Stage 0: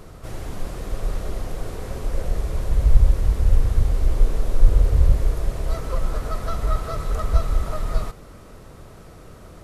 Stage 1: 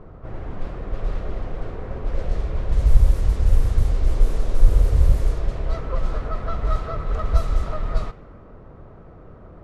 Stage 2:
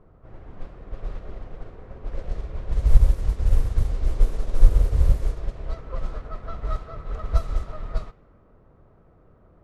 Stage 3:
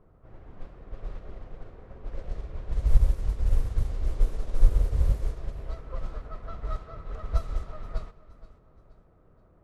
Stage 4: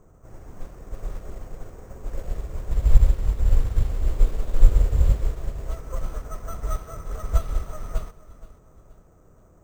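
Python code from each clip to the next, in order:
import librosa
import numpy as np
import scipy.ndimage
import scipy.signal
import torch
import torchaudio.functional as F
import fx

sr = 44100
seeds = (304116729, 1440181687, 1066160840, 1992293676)

y1 = fx.env_lowpass(x, sr, base_hz=1200.0, full_db=-10.0)
y2 = fx.upward_expand(y1, sr, threshold_db=-30.0, expansion=1.5)
y2 = F.gain(torch.from_numpy(y2), 1.0).numpy()
y3 = fx.echo_feedback(y2, sr, ms=474, feedback_pct=39, wet_db=-17.5)
y3 = F.gain(torch.from_numpy(y3), -5.0).numpy()
y4 = np.repeat(y3[::6], 6)[:len(y3)]
y4 = F.gain(torch.from_numpy(y4), 5.0).numpy()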